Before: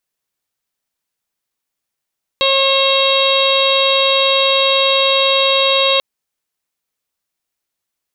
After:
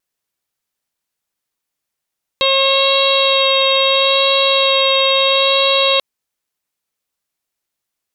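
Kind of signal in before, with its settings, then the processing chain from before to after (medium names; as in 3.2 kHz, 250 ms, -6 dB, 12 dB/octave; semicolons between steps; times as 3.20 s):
steady additive tone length 3.59 s, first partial 542 Hz, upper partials -4/-19/-10.5/-4/-4/-1/-10.5 dB, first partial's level -15.5 dB
vibrato 0.75 Hz 11 cents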